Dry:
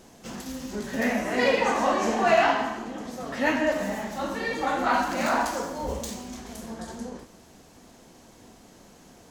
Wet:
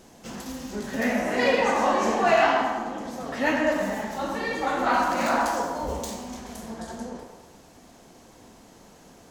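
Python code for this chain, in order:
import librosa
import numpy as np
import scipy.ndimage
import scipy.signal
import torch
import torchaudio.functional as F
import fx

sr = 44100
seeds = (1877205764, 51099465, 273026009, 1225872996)

y = fx.echo_banded(x, sr, ms=106, feedback_pct=60, hz=780.0, wet_db=-4)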